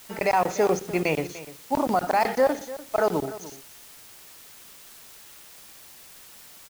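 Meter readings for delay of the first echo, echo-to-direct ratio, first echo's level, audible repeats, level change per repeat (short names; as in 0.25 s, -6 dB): 0.296 s, -16.0 dB, -16.0 dB, 1, no steady repeat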